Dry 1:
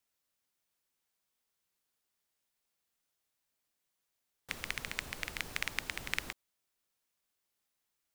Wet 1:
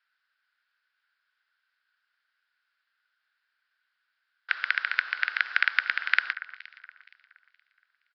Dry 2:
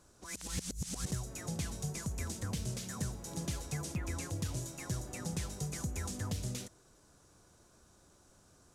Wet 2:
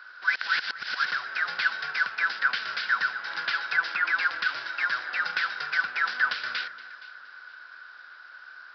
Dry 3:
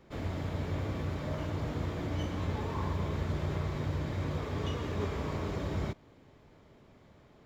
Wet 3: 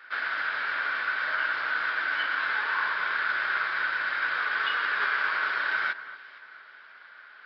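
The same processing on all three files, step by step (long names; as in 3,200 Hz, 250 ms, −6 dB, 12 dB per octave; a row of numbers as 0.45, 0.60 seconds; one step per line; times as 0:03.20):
in parallel at −10.5 dB: decimation without filtering 35×
on the sum: high-pass with resonance 1,500 Hz, resonance Q 9.1
delay that swaps between a low-pass and a high-pass 235 ms, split 2,000 Hz, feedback 55%, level −13.5 dB
downsampling to 11,025 Hz
loudness normalisation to −27 LKFS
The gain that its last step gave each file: +4.5, +13.5, +9.0 decibels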